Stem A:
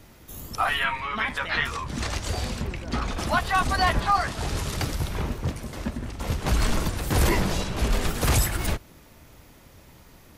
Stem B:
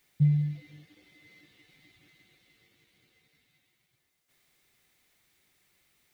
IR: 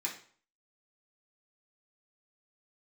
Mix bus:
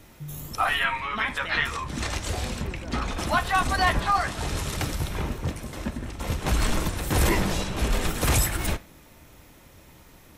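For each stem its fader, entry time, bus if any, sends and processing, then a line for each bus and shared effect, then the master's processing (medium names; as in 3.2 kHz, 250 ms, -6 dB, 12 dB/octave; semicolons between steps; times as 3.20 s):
-0.5 dB, 0.00 s, send -14 dB, band-stop 4.7 kHz, Q 18
-16.0 dB, 0.00 s, no send, none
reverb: on, RT60 0.50 s, pre-delay 3 ms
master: none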